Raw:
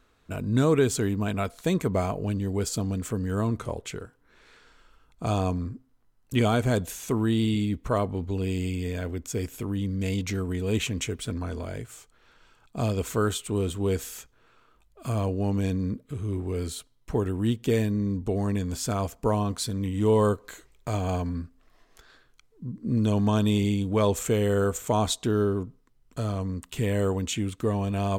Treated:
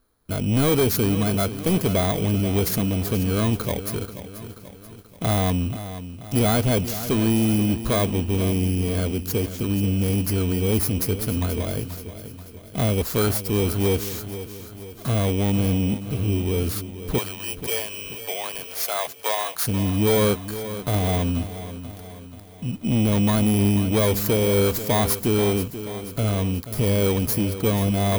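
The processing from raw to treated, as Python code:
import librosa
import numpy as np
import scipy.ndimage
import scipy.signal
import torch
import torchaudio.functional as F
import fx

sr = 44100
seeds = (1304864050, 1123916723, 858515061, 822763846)

y = fx.bit_reversed(x, sr, seeds[0], block=16)
y = fx.highpass(y, sr, hz=620.0, slope=24, at=(17.18, 19.62))
y = fx.leveller(y, sr, passes=2)
y = 10.0 ** (-13.0 / 20.0) * np.tanh(y / 10.0 ** (-13.0 / 20.0))
y = fx.echo_crushed(y, sr, ms=483, feedback_pct=55, bits=8, wet_db=-12.0)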